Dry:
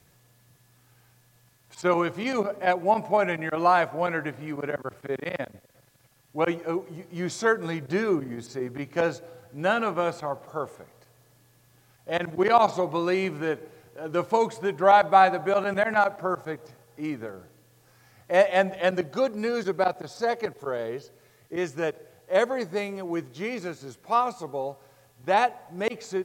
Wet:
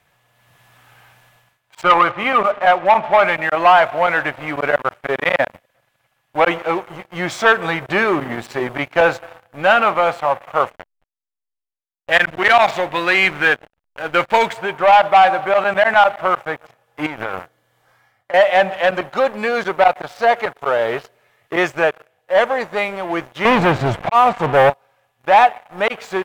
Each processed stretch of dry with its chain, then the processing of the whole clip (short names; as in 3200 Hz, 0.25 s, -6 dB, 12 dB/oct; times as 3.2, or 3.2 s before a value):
1.83–3.28 LPF 3200 Hz 24 dB/oct + bell 1200 Hz +9.5 dB 0.25 oct
10.7–14.53 EQ curve 260 Hz 0 dB, 1100 Hz -4 dB, 1600 Hz +8 dB + backlash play -34.5 dBFS
17.06–18.34 gate -52 dBFS, range -7 dB + notch 2600 Hz, Q 6.3 + compressor 10:1, threshold -37 dBFS
23.45–24.7 auto swell 0.713 s + RIAA curve playback + sample leveller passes 3
whole clip: sample leveller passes 3; band shelf 1400 Hz +12 dB 2.9 oct; AGC; gain -1 dB